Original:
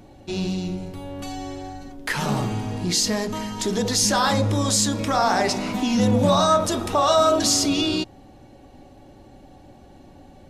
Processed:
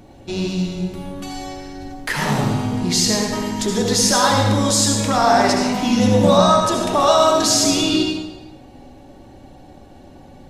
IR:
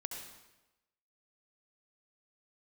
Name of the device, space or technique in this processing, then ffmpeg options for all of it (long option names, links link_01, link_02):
bathroom: -filter_complex "[1:a]atrim=start_sample=2205[link_01];[0:a][link_01]afir=irnorm=-1:irlink=0,asettb=1/sr,asplit=3[link_02][link_03][link_04];[link_02]atrim=end=6.374[link_05];[link_03]atrim=start=6.37:end=7,asetpts=PTS-STARTPTS,afade=type=in:duration=0.004:curve=qsin,afade=type=out:start_time=0.626:duration=0.004:curve=qsin,highshelf=frequency=8100:gain=-5.5[link_06];[link_04]atrim=start=6.996[link_07];[link_05][link_06]acrossfade=duration=0.004:curve1=hsin:curve2=qsin[link_08];[link_08][link_07]acrossfade=duration=0.004:curve1=qsin:curve2=hsin,volume=5.5dB"